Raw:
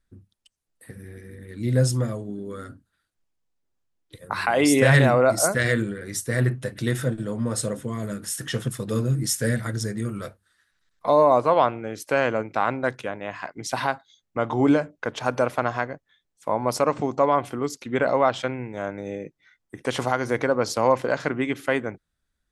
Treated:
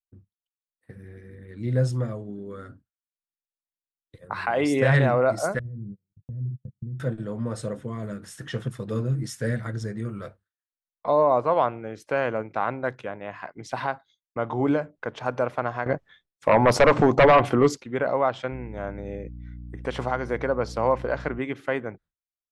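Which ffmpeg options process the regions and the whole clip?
-filter_complex "[0:a]asettb=1/sr,asplit=3[s0][s1][s2];[s0]atrim=end=5.594[s3];[s1]atrim=start=5.59:end=7,asetpts=PTS-STARTPTS,afade=t=in:d=0.004:c=qsin,afade=t=out:st=1.406:d=0.004:c=qsin,agate=range=0.0112:threshold=0.0316:ratio=16:release=100:detection=peak,acompressor=threshold=0.0355:ratio=4:attack=3.2:release=140:knee=1:detection=peak,lowpass=f=160:t=q:w=1.9[s4];[s2]atrim=start=6.996[s5];[s3][s4]acrossfade=d=0.004:c1=hsin:c2=qsin[s6];[s6][s5]acrossfade=d=0.004:c1=qsin:c2=hsin,asettb=1/sr,asplit=3[s7][s8][s9];[s7]atrim=end=15.864[s10];[s8]atrim=start=15.86:end=17.81,asetpts=PTS-STARTPTS,afade=t=in:d=0.004:c=qsin,afade=t=out:st=1.946:d=0.004:c=qsin,bandreject=f=1000:w=27,aeval=exprs='0.447*sin(PI/2*3.16*val(0)/0.447)':c=same[s11];[s9]atrim=start=17.806[s12];[s10][s11]acrossfade=d=0.004:c1=hsin:c2=qsin[s13];[s13][s12]acrossfade=d=0.004:c1=qsin:c2=hsin,asettb=1/sr,asplit=3[s14][s15][s16];[s14]atrim=end=18.524[s17];[s15]atrim=start=18.52:end=21.39,asetpts=PTS-STARTPTS,afade=t=in:d=0.004:c=qsin,afade=t=out:st=2.866:d=0.004:c=qsin,bandreject=f=6600:w=23,aeval=exprs='val(0)+0.0178*(sin(2*PI*60*n/s)+sin(2*PI*2*60*n/s)/2+sin(2*PI*3*60*n/s)/3+sin(2*PI*4*60*n/s)/4+sin(2*PI*5*60*n/s)/5)':c=same[s18];[s16]atrim=start=21.386[s19];[s17][s18]acrossfade=d=0.004:c1=hsin:c2=qsin[s20];[s20][s19]acrossfade=d=0.004:c1=qsin:c2=hsin,aemphasis=mode=reproduction:type=75fm,agate=range=0.0224:threshold=0.00562:ratio=3:detection=peak,equalizer=f=270:w=2.6:g=-3,volume=0.708"

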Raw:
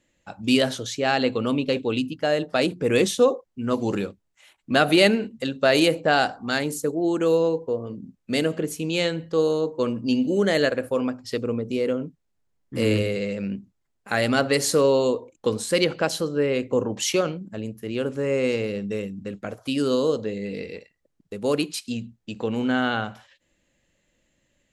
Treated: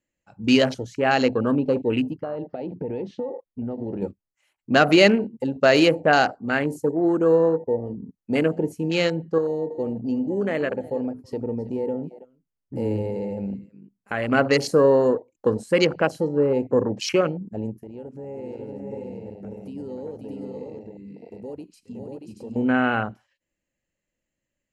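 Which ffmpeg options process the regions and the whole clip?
-filter_complex "[0:a]asettb=1/sr,asplit=3[s0][s1][s2];[s0]atrim=end=2.204[s3];[s1]atrim=start=2.2:end=4.02,asetpts=PTS-STARTPTS,afade=t=in:d=0.004:c=qsin,afade=t=out:st=1.816:d=0.004:c=qsin,lowpass=f=4100:w=0.5412,lowpass=f=4100:w=1.3066,acompressor=threshold=0.0447:ratio=16:attack=3.2:release=140:knee=1:detection=peak[s4];[s2]atrim=start=4.016[s5];[s3][s4]acrossfade=d=0.004:c1=hsin:c2=qsin[s6];[s6][s5]acrossfade=d=0.004:c1=qsin:c2=hsin,asettb=1/sr,asplit=3[s7][s8][s9];[s7]atrim=end=9.384[s10];[s8]atrim=start=9.38:end=14.32,asetpts=PTS-STARTPTS,afade=t=in:d=0.004:c=qsin,afade=t=out:st=4.936:d=0.004:c=qsin,acompressor=threshold=0.0224:ratio=1.5:attack=3.2:release=140:knee=1:detection=peak,aecho=1:1:326:0.168,atrim=end_sample=217854[s11];[s9]atrim=start=14.316[s12];[s10][s11]acrossfade=d=0.004:c1=hsin:c2=qsin[s13];[s13][s12]acrossfade=d=0.004:c1=qsin:c2=hsin,asettb=1/sr,asplit=3[s14][s15][s16];[s14]atrim=end=17.834[s17];[s15]atrim=start=17.83:end=22.56,asetpts=PTS-STARTPTS,afade=t=in:d=0.004:c=qsin,afade=t=out:st=4.726:d=0.004:c=qsin,bandreject=f=660:w=5.4,acompressor=threshold=0.00794:ratio=2.5:attack=3.2:release=140:knee=1:detection=peak,aecho=1:1:534|630:0.596|0.708,atrim=end_sample=208593[s18];[s16]atrim=start=22.556[s19];[s17][s18]acrossfade=d=0.004:c1=hsin:c2=qsin[s20];[s20][s19]acrossfade=d=0.004:c1=qsin:c2=hsin,afwtdn=0.0282,equalizer=f=3600:w=5.8:g=-10,volume=1.33"

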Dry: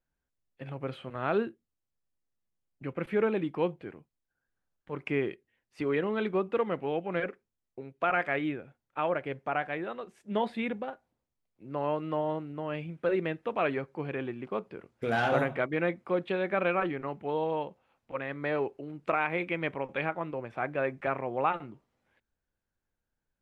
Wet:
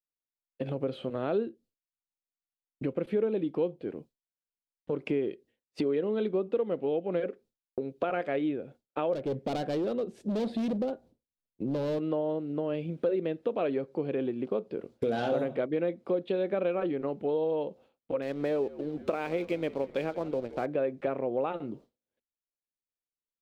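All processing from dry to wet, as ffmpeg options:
-filter_complex "[0:a]asettb=1/sr,asplit=3[s0][s1][s2];[s0]atrim=end=9.134[s3];[s1]atrim=start=9.13:end=11.99,asetpts=PTS-STARTPTS,afade=t=in:d=0.004:c=qsin,afade=t=out:st=2.856:d=0.004:c=qsin,lowshelf=f=350:g=11,asoftclip=type=hard:threshold=0.0266[s4];[s2]atrim=start=11.986[s5];[s3][s4]acrossfade=d=0.004:c1=hsin:c2=qsin[s6];[s6][s5]acrossfade=d=0.004:c1=qsin:c2=hsin,asettb=1/sr,asplit=3[s7][s8][s9];[s7]atrim=end=18.224[s10];[s8]atrim=start=18.22:end=20.66,asetpts=PTS-STARTPTS,afade=t=in:d=0.004:c=qsin,afade=t=out:st=2.436:d=0.004:c=qsin,aeval=exprs='sgn(val(0))*max(abs(val(0))-0.00316,0)':c=same,asplit=5[s11][s12][s13][s14][s15];[s12]adelay=175,afreqshift=-70,volume=0.1[s16];[s13]adelay=350,afreqshift=-140,volume=0.0562[s17];[s14]adelay=525,afreqshift=-210,volume=0.0313[s18];[s15]adelay=700,afreqshift=-280,volume=0.0176[s19];[s11][s16][s17][s18][s19]amix=inputs=5:normalize=0,atrim=end_sample=107604[s20];[s9]atrim=start=20.656[s21];[s10][s20]acrossfade=d=0.004:c1=hsin:c2=qsin[s22];[s22][s21]acrossfade=d=0.004:c1=qsin:c2=hsin,agate=range=0.0224:threshold=0.00178:ratio=3:detection=peak,equalizer=f=250:t=o:w=1:g=7,equalizer=f=500:t=o:w=1:g=10,equalizer=f=1000:t=o:w=1:g=-4,equalizer=f=2000:t=o:w=1:g=-6,equalizer=f=4000:t=o:w=1:g=7,acompressor=threshold=0.0126:ratio=3,volume=2.11"

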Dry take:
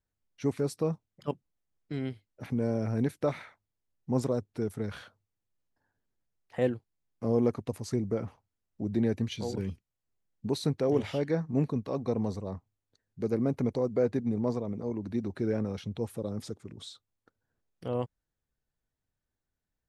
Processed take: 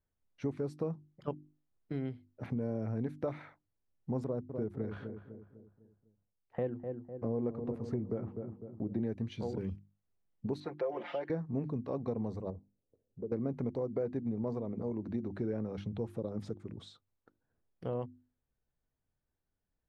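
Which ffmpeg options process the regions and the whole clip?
-filter_complex "[0:a]asettb=1/sr,asplit=3[s0][s1][s2];[s0]atrim=end=4.244[s3];[s1]atrim=start=4.24:end=9.03,asetpts=PTS-STARTPTS,afade=t=in:d=0.004:c=qsin,afade=t=out:st=4.786:d=0.004:c=qsin,agate=range=0.355:threshold=0.00282:ratio=16:release=100:detection=peak,highshelf=f=3500:g=-12,asplit=2[s4][s5];[s5]adelay=251,lowpass=f=1100:p=1,volume=0.299,asplit=2[s6][s7];[s7]adelay=251,lowpass=f=1100:p=1,volume=0.48,asplit=2[s8][s9];[s9]adelay=251,lowpass=f=1100:p=1,volume=0.48,asplit=2[s10][s11];[s11]adelay=251,lowpass=f=1100:p=1,volume=0.48,asplit=2[s12][s13];[s13]adelay=251,lowpass=f=1100:p=1,volume=0.48[s14];[s4][s6][s8][s10][s12][s14]amix=inputs=6:normalize=0,atrim=end_sample=211239[s15];[s2]atrim=start=9.026[s16];[s3][s15]acrossfade=d=0.004:c1=hsin:c2=qsin[s17];[s17][s16]acrossfade=d=0.004:c1=qsin:c2=hsin,asettb=1/sr,asplit=3[s18][s19][s20];[s18]atrim=end=10.604[s21];[s19]atrim=start=10.6:end=11.3,asetpts=PTS-STARTPTS,afade=t=in:d=0.004:c=qsin,afade=t=out:st=0.696:d=0.004:c=qsin,highpass=540,lowpass=3200,aecho=1:1:5.7:0.98,atrim=end_sample=30870[s22];[s20]atrim=start=11.296[s23];[s21][s22]acrossfade=d=0.004:c1=hsin:c2=qsin[s24];[s24][s23]acrossfade=d=0.004:c1=qsin:c2=hsin,asettb=1/sr,asplit=3[s25][s26][s27];[s25]atrim=end=12.504[s28];[s26]atrim=start=12.5:end=13.32,asetpts=PTS-STARTPTS,afade=t=in:d=0.004:c=qsin,afade=t=out:st=0.816:d=0.004:c=qsin,lowpass=f=500:t=q:w=2.7,acompressor=threshold=0.00398:ratio=2:attack=3.2:release=140:knee=1:detection=peak[s29];[s27]atrim=start=13.316[s30];[s28][s29]acrossfade=d=0.004:c1=hsin:c2=qsin[s31];[s31][s30]acrossfade=d=0.004:c1=qsin:c2=hsin,lowpass=f=1200:p=1,bandreject=f=50:t=h:w=6,bandreject=f=100:t=h:w=6,bandreject=f=150:t=h:w=6,bandreject=f=200:t=h:w=6,bandreject=f=250:t=h:w=6,bandreject=f=300:t=h:w=6,bandreject=f=350:t=h:w=6,acompressor=threshold=0.0178:ratio=3,volume=1.19"

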